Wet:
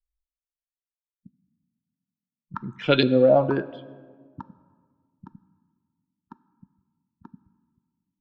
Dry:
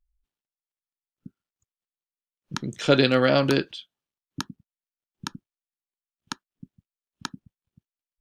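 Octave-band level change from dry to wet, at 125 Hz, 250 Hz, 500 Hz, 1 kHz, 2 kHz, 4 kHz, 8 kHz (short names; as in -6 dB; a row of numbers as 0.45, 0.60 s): -1.5 dB, 0.0 dB, +2.5 dB, 0.0 dB, -4.0 dB, -3.0 dB, under -25 dB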